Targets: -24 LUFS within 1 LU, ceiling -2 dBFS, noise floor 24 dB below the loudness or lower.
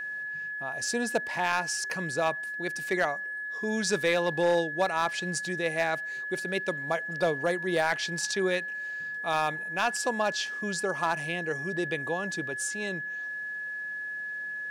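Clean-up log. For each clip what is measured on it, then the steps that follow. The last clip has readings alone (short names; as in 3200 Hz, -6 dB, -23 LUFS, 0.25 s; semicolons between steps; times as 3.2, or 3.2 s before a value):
clipped 0.3%; flat tops at -17.5 dBFS; steady tone 1700 Hz; tone level -33 dBFS; loudness -29.5 LUFS; peak -17.5 dBFS; loudness target -24.0 LUFS
-> clip repair -17.5 dBFS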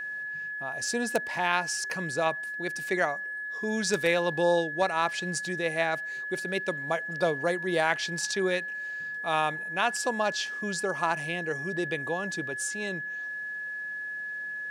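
clipped 0.0%; steady tone 1700 Hz; tone level -33 dBFS
-> notch 1700 Hz, Q 30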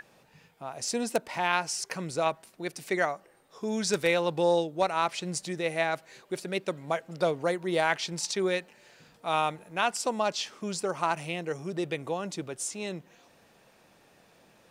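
steady tone none; loudness -30.0 LUFS; peak -9.5 dBFS; loudness target -24.0 LUFS
-> gain +6 dB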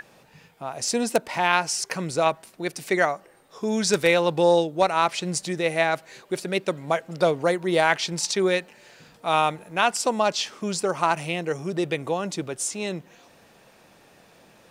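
loudness -24.0 LUFS; peak -3.5 dBFS; noise floor -55 dBFS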